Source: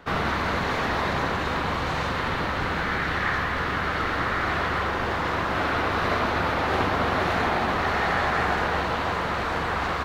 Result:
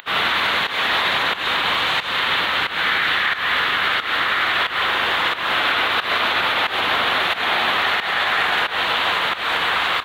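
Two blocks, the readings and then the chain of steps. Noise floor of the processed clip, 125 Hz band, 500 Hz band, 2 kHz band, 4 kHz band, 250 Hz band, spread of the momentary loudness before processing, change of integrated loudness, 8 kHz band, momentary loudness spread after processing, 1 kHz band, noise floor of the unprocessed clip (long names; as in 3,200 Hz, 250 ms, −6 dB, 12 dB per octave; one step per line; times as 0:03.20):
−28 dBFS, −11.0 dB, −1.0 dB, +8.0 dB, +15.0 dB, −5.5 dB, 3 LU, +6.5 dB, +4.5 dB, 2 LU, +3.5 dB, −27 dBFS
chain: upward compression, threshold −38 dBFS
spectral tilt +4.5 dB per octave
fake sidechain pumping 90 BPM, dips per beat 1, −15 dB, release 254 ms
high shelf with overshoot 4,300 Hz −7.5 dB, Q 3
boost into a limiter +13.5 dB
level −8.5 dB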